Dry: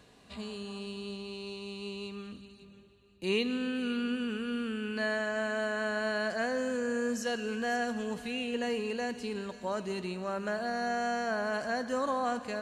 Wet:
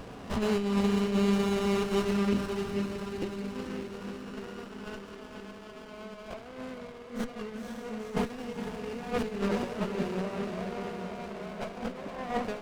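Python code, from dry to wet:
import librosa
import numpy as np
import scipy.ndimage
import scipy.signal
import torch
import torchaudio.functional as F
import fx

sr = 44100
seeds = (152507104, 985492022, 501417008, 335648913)

y = fx.fade_out_tail(x, sr, length_s=0.63)
y = fx.lowpass(y, sr, hz=3100.0, slope=6)
y = fx.peak_eq(y, sr, hz=2100.0, db=13.0, octaves=0.28)
y = fx.room_early_taps(y, sr, ms=(44, 69), db=(-15.0, -10.5))
y = fx.over_compress(y, sr, threshold_db=-41.0, ratio=-0.5)
y = fx.highpass(y, sr, hz=1500.0, slope=6, at=(3.81, 5.93))
y = fx.echo_diffused(y, sr, ms=494, feedback_pct=68, wet_db=-6)
y = fx.running_max(y, sr, window=17)
y = y * 10.0 ** (8.5 / 20.0)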